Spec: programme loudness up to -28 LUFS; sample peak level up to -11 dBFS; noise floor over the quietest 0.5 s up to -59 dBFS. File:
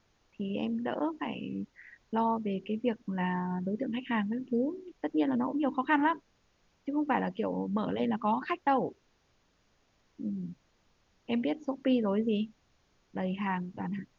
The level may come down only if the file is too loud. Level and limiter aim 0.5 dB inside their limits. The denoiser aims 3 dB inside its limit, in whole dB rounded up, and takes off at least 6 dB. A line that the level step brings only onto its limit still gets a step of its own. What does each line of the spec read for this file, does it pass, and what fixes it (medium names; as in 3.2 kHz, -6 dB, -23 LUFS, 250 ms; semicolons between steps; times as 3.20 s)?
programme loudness -32.0 LUFS: pass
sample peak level -15.0 dBFS: pass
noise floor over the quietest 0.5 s -70 dBFS: pass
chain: none needed